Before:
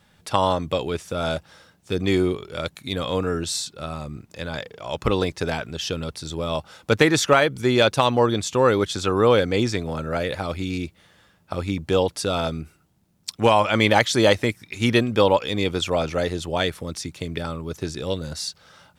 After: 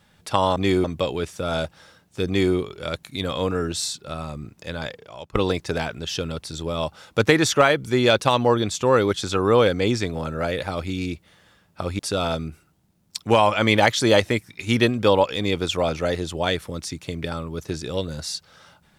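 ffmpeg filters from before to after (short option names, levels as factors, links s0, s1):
-filter_complex "[0:a]asplit=5[s0][s1][s2][s3][s4];[s0]atrim=end=0.562[s5];[s1]atrim=start=1.988:end=2.272[s6];[s2]atrim=start=0.558:end=5.07,asetpts=PTS-STARTPTS,afade=t=out:st=4.002:d=0.51:silence=0.0944061[s7];[s3]atrim=start=5.07:end=11.712,asetpts=PTS-STARTPTS,afade=t=in:d=0.004:c=hsin:silence=0.0944061[s8];[s4]atrim=start=12.118[s9];[s5][s6]acrossfade=d=0.004:c1=hsin:c2=hsin[s10];[s7][s8]concat=n=2:v=0:a=1[s11];[s10][s11]acrossfade=d=0.004:c1=hsin:c2=hsin[s12];[s12][s9]acrossfade=d=0.004:c1=hsin:c2=hsin"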